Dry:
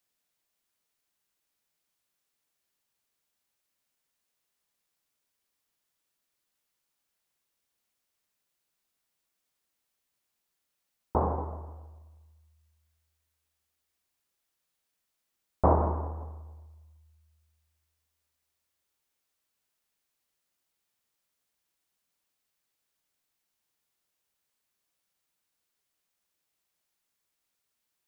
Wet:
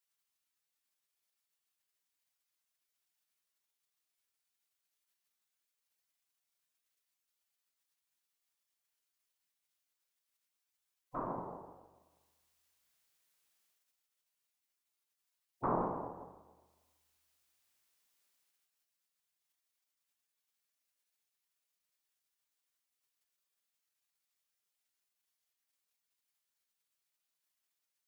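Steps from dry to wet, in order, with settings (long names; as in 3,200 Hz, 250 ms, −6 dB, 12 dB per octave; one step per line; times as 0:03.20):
gate on every frequency bin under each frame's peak −10 dB weak
one half of a high-frequency compander encoder only
level −3 dB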